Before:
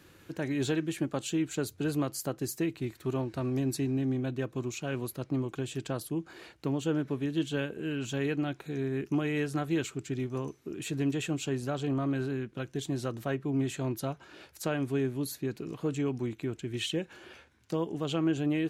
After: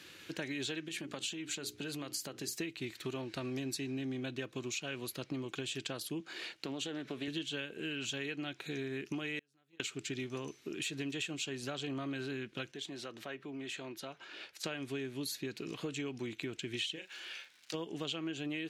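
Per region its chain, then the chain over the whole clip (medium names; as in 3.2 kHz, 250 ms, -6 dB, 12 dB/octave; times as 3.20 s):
0.88–2.53 s: hum notches 60/120/180/240/300/360/420 Hz + compression 5:1, threshold -35 dBFS
6.20–7.28 s: high-pass 150 Hz + compression, threshold -31 dBFS + loudspeaker Doppler distortion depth 0.16 ms
9.39–9.80 s: compression 2.5:1, threshold -32 dBFS + gate -29 dBFS, range -35 dB
12.71–14.64 s: high-pass 360 Hz 6 dB/octave + compression 2:1, threshold -44 dBFS + treble shelf 3.9 kHz -9.5 dB
16.95–17.73 s: high-pass 1.1 kHz 6 dB/octave + crackle 260 per s -55 dBFS + doubling 37 ms -9.5 dB
whole clip: frequency weighting D; compression, threshold -35 dBFS; trim -1 dB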